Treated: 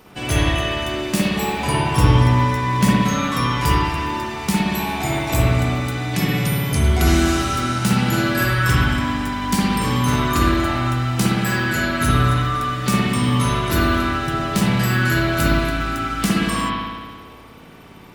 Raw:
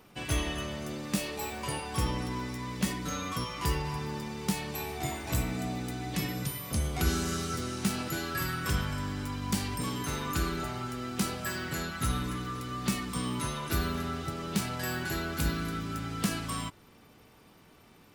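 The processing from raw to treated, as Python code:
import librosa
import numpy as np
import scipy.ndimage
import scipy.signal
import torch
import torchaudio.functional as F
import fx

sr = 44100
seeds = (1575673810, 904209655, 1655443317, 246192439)

y = fx.low_shelf(x, sr, hz=490.0, db=4.5, at=(1.57, 2.92))
y = fx.rev_spring(y, sr, rt60_s=1.6, pass_ms=(57,), chirp_ms=50, drr_db=-5.0)
y = F.gain(torch.from_numpy(y), 8.5).numpy()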